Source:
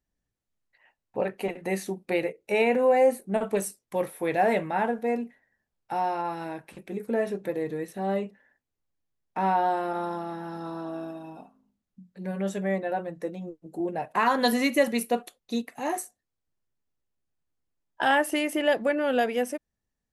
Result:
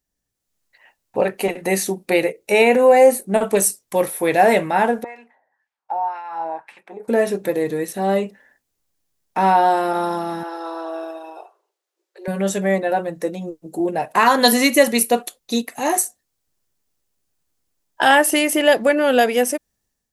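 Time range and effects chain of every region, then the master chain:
5.04–7.08 s: peaking EQ 870 Hz +9 dB 0.55 oct + compression 4:1, threshold -28 dBFS + wah-wah 1.9 Hz 640–2100 Hz, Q 2.1
10.43–12.28 s: brick-wall FIR high-pass 330 Hz + treble shelf 5.4 kHz -11 dB
whole clip: tone controls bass -3 dB, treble +8 dB; level rider gain up to 7 dB; trim +2.5 dB

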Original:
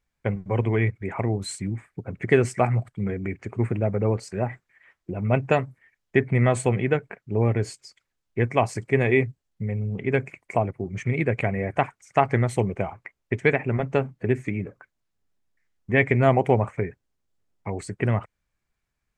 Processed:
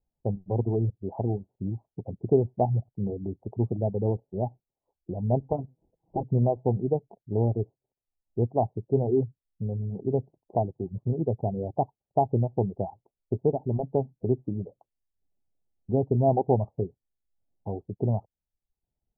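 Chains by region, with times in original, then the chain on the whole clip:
5.40–6.23 s: comb filter that takes the minimum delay 6.2 ms + high-pass 51 Hz + upward compressor, threshold -35 dBFS
whole clip: reverb removal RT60 0.55 s; steep low-pass 870 Hz 72 dB/octave; dynamic bell 540 Hz, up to -3 dB, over -36 dBFS, Q 6.7; trim -2 dB

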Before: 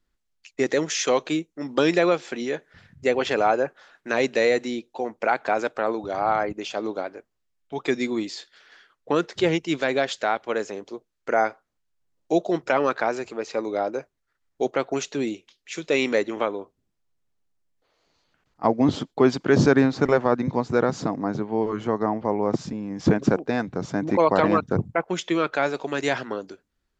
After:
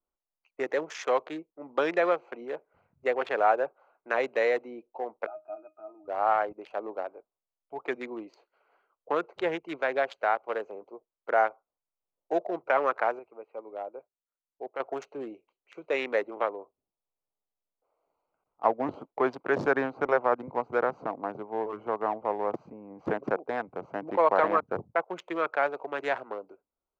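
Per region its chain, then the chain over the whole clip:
5.26–6.08 s: high-pass 200 Hz 6 dB/octave + peaking EQ 450 Hz -11 dB 0.4 oct + pitch-class resonator D#, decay 0.14 s
13.19–14.80 s: four-pole ladder low-pass 3.9 kHz, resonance 30% + transient shaper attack -1 dB, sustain -5 dB
whole clip: local Wiener filter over 25 samples; three-band isolator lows -20 dB, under 480 Hz, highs -16 dB, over 2.3 kHz

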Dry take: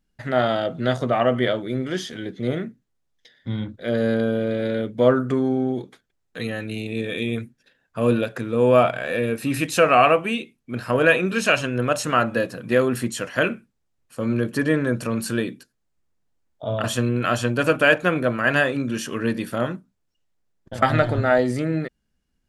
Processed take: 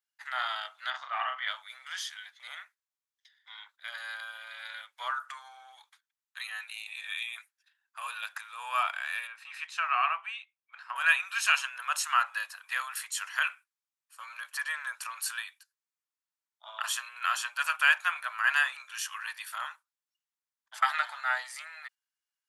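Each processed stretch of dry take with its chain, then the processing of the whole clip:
0.90–1.48 s: distance through air 190 m + doubling 38 ms -4.5 dB
9.27–10.96 s: high-pass 470 Hz 6 dB/octave + tape spacing loss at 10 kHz 23 dB
whole clip: gate -37 dBFS, range -6 dB; steep high-pass 900 Hz 48 dB/octave; treble shelf 6.9 kHz +5 dB; trim -4.5 dB

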